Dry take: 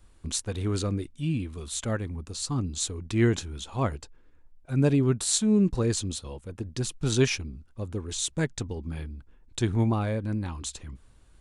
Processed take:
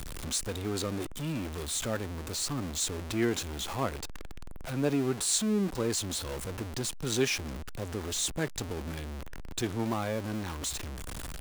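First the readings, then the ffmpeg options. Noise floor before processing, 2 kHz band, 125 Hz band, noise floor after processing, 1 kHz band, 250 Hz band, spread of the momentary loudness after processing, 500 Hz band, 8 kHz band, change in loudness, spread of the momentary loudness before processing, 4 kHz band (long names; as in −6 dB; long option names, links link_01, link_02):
−57 dBFS, −1.0 dB, −8.5 dB, −40 dBFS, 0.0 dB, −5.5 dB, 11 LU, −2.5 dB, −0.5 dB, −4.0 dB, 15 LU, 0.0 dB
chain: -filter_complex "[0:a]aeval=exprs='val(0)+0.5*0.0422*sgn(val(0))':channel_layout=same,acrossover=split=220|2900[link_01][link_02][link_03];[link_01]acompressor=threshold=-34dB:ratio=6[link_04];[link_04][link_02][link_03]amix=inputs=3:normalize=0,volume=-4.5dB"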